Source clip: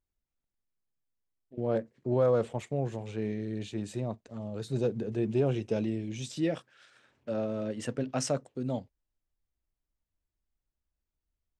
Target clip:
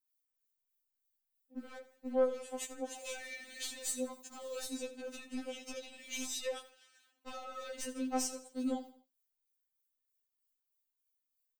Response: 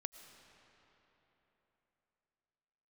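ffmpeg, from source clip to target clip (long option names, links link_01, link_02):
-filter_complex "[0:a]aemphasis=mode=production:type=riaa,agate=range=-15dB:threshold=-50dB:ratio=16:detection=peak,asettb=1/sr,asplit=3[link_01][link_02][link_03];[link_01]atrim=end=2.964[link_04];[link_02]atrim=start=2.96:end=4.77,asetpts=PTS-STARTPTS,afade=type=in:duration=0.004:curve=qsin,afade=type=out:start_time=1.806:duration=0.004:curve=qsin,highshelf=frequency=4400:gain=7.5[link_05];[link_03]atrim=start=4.766[link_06];[link_04][link_05]acrossfade=duration=0.004:curve1=hsin:curve2=qsin[link_07];[link_07][link_06]acrossfade=duration=0.004:curve1=qsin:curve2=hsin,acompressor=threshold=-41dB:ratio=10,aeval=exprs='clip(val(0),-1,0.00794)':channel_layout=same,acrossover=split=1900[link_08][link_09];[link_08]aeval=exprs='val(0)*(1-0.5/2+0.5/2*cos(2*PI*3.2*n/s))':channel_layout=same[link_10];[link_09]aeval=exprs='val(0)*(1-0.5/2-0.5/2*cos(2*PI*3.2*n/s))':channel_layout=same[link_11];[link_10][link_11]amix=inputs=2:normalize=0,aecho=1:1:82|164|246:0.178|0.0658|0.0243,afftfilt=real='re*3.46*eq(mod(b,12),0)':imag='im*3.46*eq(mod(b,12),0)':win_size=2048:overlap=0.75,volume=10dB"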